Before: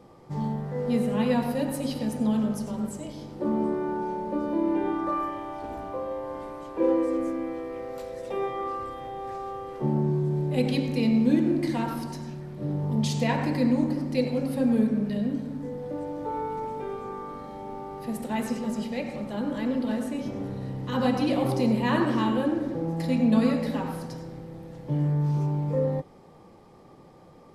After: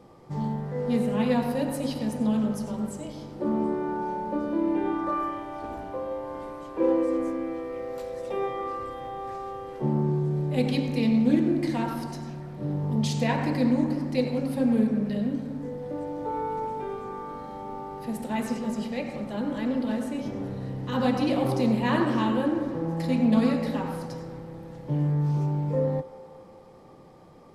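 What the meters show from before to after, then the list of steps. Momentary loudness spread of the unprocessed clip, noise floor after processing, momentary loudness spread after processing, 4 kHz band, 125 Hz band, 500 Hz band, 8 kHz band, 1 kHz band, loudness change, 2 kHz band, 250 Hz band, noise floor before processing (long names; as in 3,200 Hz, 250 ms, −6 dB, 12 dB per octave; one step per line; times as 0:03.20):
13 LU, −48 dBFS, 12 LU, −0.5 dB, 0.0 dB, 0.0 dB, −1.0 dB, +0.5 dB, 0.0 dB, 0.0 dB, 0.0 dB, −52 dBFS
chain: delay with a band-pass on its return 178 ms, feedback 69%, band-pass 910 Hz, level −14 dB
highs frequency-modulated by the lows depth 0.13 ms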